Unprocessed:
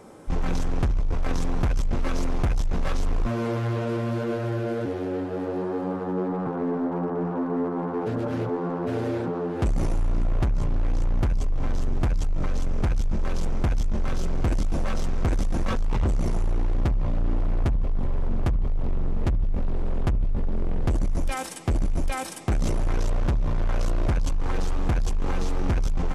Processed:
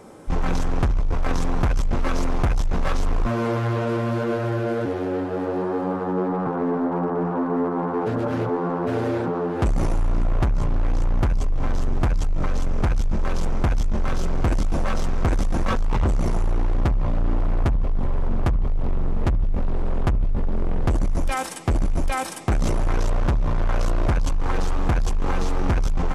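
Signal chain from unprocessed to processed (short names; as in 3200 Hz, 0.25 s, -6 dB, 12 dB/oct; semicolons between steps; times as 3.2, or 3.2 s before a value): dynamic EQ 1100 Hz, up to +4 dB, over -43 dBFS, Q 0.8; gain +2.5 dB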